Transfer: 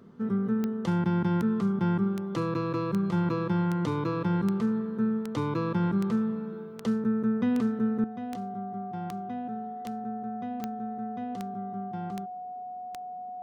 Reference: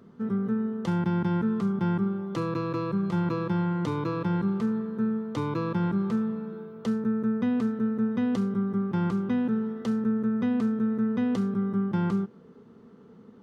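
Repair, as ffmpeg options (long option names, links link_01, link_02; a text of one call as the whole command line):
ffmpeg -i in.wav -af "adeclick=threshold=4,bandreject=frequency=730:width=30,asetnsamples=nb_out_samples=441:pad=0,asendcmd='8.04 volume volume 11dB',volume=0dB" out.wav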